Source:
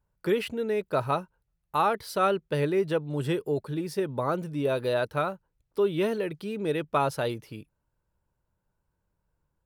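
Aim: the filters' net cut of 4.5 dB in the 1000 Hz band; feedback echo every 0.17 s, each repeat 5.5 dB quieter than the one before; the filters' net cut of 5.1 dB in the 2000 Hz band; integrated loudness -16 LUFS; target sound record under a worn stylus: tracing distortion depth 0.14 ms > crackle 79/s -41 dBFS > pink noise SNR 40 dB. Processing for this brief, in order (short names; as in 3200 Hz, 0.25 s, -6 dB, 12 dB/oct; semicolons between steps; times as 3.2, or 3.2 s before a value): bell 1000 Hz -4.5 dB; bell 2000 Hz -5.5 dB; feedback echo 0.17 s, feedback 53%, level -5.5 dB; tracing distortion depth 0.14 ms; crackle 79/s -41 dBFS; pink noise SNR 40 dB; gain +13 dB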